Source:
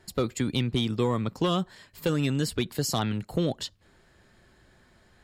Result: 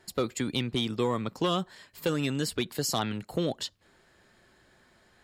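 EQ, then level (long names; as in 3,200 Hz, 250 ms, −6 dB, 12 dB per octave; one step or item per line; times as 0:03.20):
low-shelf EQ 160 Hz −10 dB
0.0 dB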